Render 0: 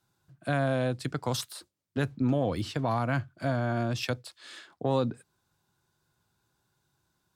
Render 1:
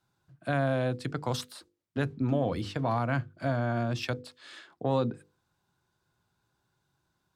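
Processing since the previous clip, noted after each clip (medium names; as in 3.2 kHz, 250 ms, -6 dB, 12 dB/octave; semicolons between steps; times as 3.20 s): treble shelf 5.9 kHz -8.5 dB; hum notches 50/100/150/200/250/300/350/400/450/500 Hz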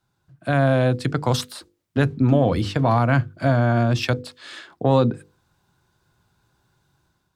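bass shelf 92 Hz +6.5 dB; level rider gain up to 7 dB; trim +2.5 dB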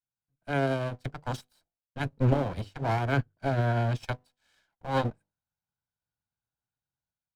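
comb filter that takes the minimum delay 1.3 ms; upward expansion 2.5:1, over -33 dBFS; trim -3.5 dB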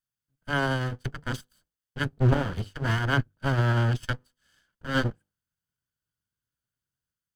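comb filter that takes the minimum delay 0.63 ms; trim +3.5 dB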